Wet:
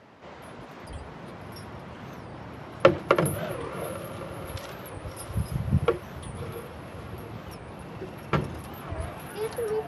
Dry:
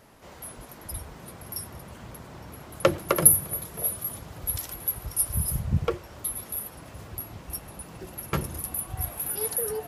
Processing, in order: BPF 100–3400 Hz; diffused feedback echo 0.636 s, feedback 57%, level -13 dB; record warp 45 rpm, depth 250 cents; gain +3.5 dB

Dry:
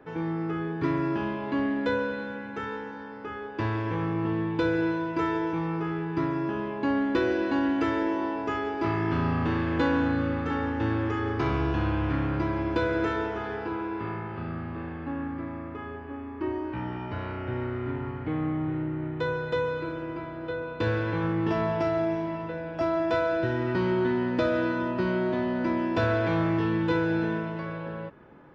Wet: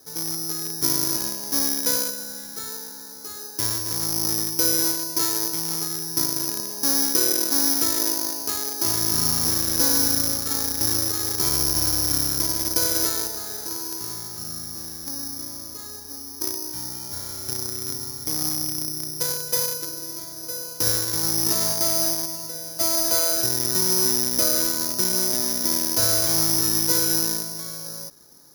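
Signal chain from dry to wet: in parallel at -6 dB: bit-crush 4-bit; on the sum: careless resampling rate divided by 8×, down filtered, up zero stuff; gain -8 dB

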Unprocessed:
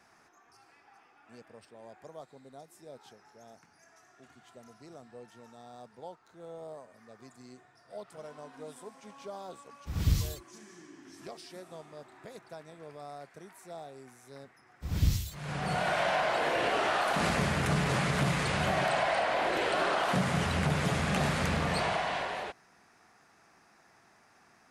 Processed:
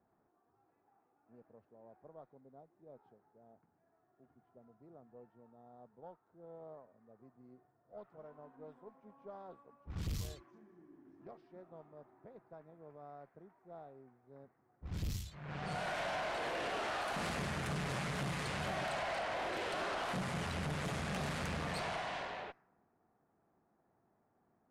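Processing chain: tube stage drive 28 dB, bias 0.5; low-pass opened by the level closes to 580 Hz, open at -30 dBFS; gain -5.5 dB

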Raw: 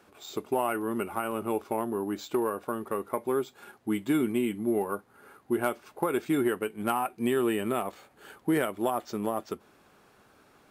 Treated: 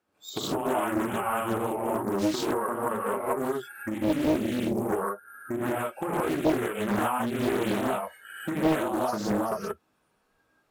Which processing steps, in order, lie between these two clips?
spectral noise reduction 24 dB; compressor 6:1, threshold -35 dBFS, peak gain reduction 12.5 dB; non-linear reverb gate 0.2 s rising, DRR -8 dB; Doppler distortion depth 0.91 ms; gain +4 dB

